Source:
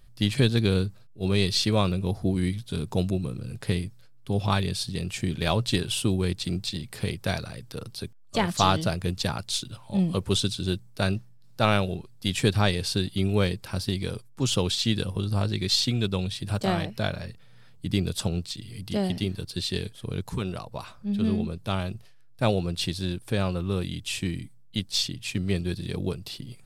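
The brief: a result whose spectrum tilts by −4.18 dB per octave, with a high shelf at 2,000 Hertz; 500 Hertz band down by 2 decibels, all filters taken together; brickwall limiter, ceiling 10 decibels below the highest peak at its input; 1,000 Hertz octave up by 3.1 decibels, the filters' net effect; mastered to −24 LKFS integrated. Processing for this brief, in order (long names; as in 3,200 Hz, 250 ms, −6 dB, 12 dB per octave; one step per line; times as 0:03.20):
parametric band 500 Hz −4 dB
parametric band 1,000 Hz +4 dB
high-shelf EQ 2,000 Hz +5 dB
level +3.5 dB
brickwall limiter −10 dBFS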